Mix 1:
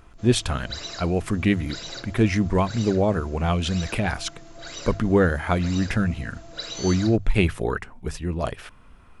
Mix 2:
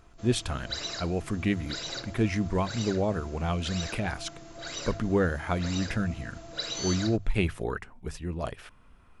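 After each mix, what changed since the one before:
speech -6.5 dB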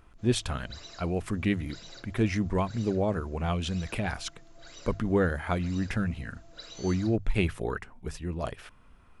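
background -12.0 dB

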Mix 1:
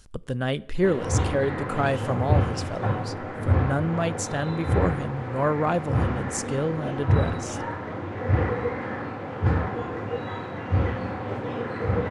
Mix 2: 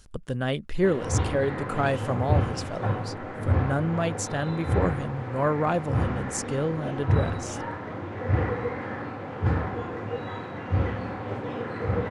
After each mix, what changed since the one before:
reverb: off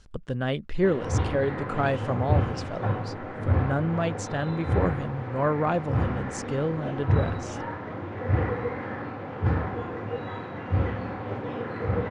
master: add distance through air 87 m

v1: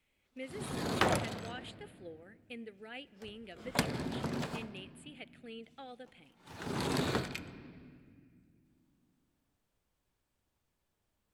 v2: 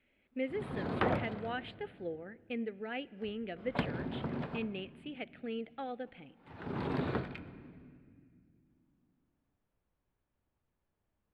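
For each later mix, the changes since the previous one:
speech +10.0 dB; master: add distance through air 460 m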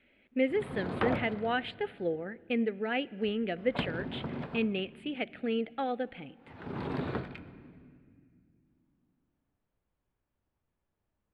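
speech +8.0 dB

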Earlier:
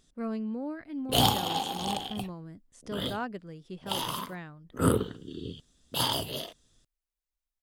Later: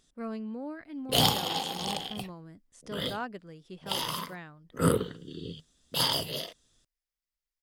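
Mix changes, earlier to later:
background: add graphic EQ with 31 bands 160 Hz +9 dB, 500 Hz +5 dB, 800 Hz -3 dB, 2 kHz +6 dB, 5 kHz +7 dB; master: add bass shelf 400 Hz -5 dB

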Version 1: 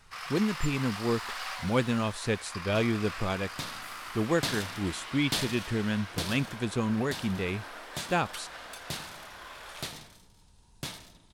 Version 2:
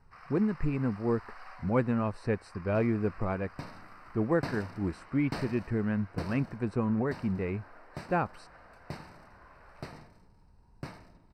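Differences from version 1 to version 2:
first sound -8.0 dB; master: add boxcar filter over 13 samples

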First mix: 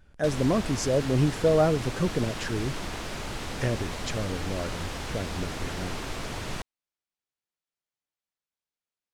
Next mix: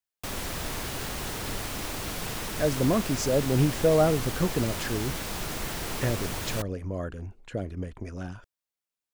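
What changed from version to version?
speech: entry +2.40 s; background: remove distance through air 58 m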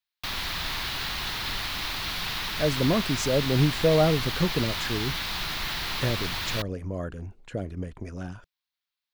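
background: add ten-band graphic EQ 125 Hz -4 dB, 250 Hz -4 dB, 500 Hz -9 dB, 1 kHz +4 dB, 2 kHz +4 dB, 4 kHz +12 dB, 8 kHz -10 dB; master: add peaking EQ 160 Hz +3.5 dB 0.29 oct

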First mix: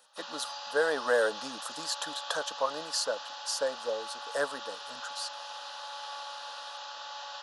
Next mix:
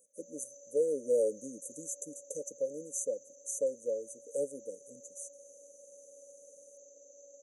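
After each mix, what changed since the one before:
master: add brick-wall FIR band-stop 590–5900 Hz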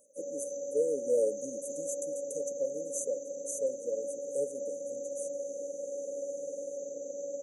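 background: remove band-pass filter 3.4 kHz, Q 1.4

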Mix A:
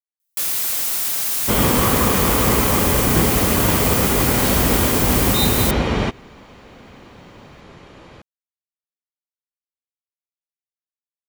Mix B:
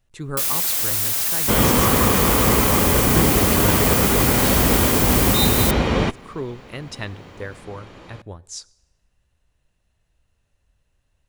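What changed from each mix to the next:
speech: unmuted; reverb: on, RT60 1.0 s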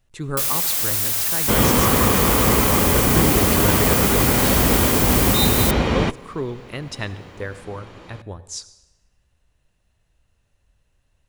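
speech: send +11.0 dB

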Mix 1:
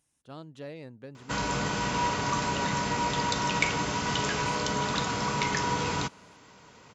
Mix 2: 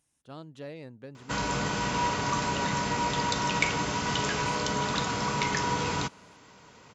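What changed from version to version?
no change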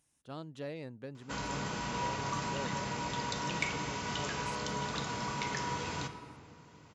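background -8.5 dB; reverb: on, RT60 2.4 s

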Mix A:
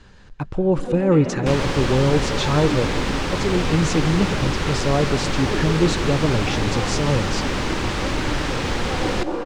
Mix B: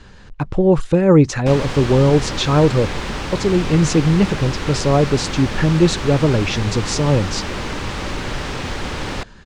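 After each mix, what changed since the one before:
speech +7.0 dB; first sound: muted; reverb: off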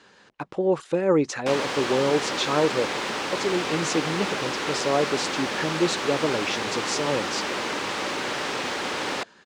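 speech -5.5 dB; master: add high-pass 330 Hz 12 dB/octave

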